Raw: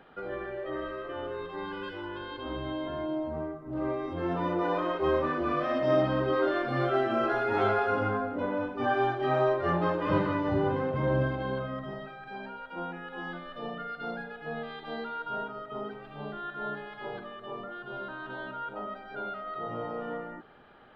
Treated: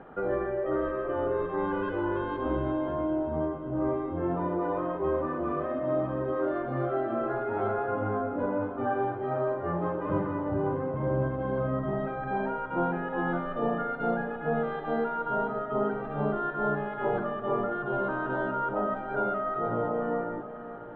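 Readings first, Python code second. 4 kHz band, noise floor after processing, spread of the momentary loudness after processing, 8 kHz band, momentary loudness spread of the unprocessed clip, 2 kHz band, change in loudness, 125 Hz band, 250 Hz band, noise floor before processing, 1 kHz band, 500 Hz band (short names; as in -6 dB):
under -10 dB, -37 dBFS, 2 LU, n/a, 13 LU, -1.0 dB, +1.5 dB, +1.0 dB, +2.5 dB, -47 dBFS, +1.0 dB, +1.5 dB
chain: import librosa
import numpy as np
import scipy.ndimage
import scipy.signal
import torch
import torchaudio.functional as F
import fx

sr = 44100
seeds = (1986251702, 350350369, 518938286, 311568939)

p1 = scipy.signal.sosfilt(scipy.signal.butter(2, 1200.0, 'lowpass', fs=sr, output='sos'), x)
p2 = fx.rider(p1, sr, range_db=10, speed_s=0.5)
p3 = p2 + fx.echo_feedback(p2, sr, ms=544, feedback_pct=55, wet_db=-13, dry=0)
y = F.gain(torch.from_numpy(p3), 2.0).numpy()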